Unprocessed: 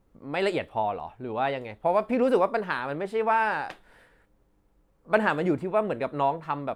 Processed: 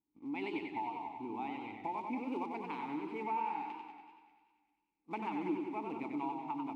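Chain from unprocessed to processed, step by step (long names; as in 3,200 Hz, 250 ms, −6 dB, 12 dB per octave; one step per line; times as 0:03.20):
one scale factor per block 5 bits
noise gate −51 dBFS, range −15 dB
formant filter u
dynamic equaliser 3,400 Hz, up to +5 dB, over −54 dBFS, Q 0.71
downward compressor 2.5 to 1, threshold −45 dBFS, peak gain reduction 12.5 dB
low-shelf EQ 72 Hz +6 dB
on a send: feedback echo with a high-pass in the loop 198 ms, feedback 52%, high-pass 890 Hz, level −11 dB
on the sum: feedback echo with a swinging delay time 94 ms, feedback 64%, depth 87 cents, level −5 dB
level +4.5 dB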